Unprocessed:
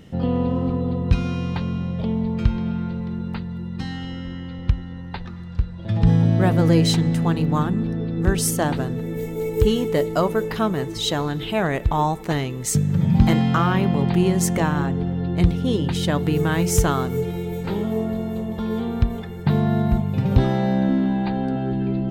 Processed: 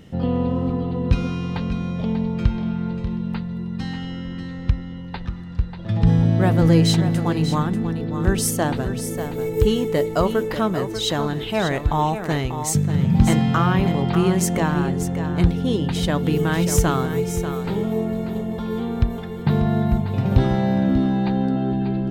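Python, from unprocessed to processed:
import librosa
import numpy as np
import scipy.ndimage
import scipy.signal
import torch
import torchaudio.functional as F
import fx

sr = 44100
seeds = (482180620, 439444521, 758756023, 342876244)

y = x + 10.0 ** (-9.5 / 20.0) * np.pad(x, (int(590 * sr / 1000.0), 0))[:len(x)]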